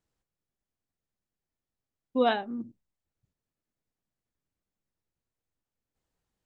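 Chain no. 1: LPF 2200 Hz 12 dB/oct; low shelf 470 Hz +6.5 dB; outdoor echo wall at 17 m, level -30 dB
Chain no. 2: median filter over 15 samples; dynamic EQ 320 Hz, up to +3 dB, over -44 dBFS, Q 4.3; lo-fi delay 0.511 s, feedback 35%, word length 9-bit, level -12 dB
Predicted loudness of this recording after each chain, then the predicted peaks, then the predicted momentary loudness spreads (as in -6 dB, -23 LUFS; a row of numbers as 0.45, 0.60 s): -26.5, -30.5 LUFS; -10.5, -13.0 dBFS; 12, 21 LU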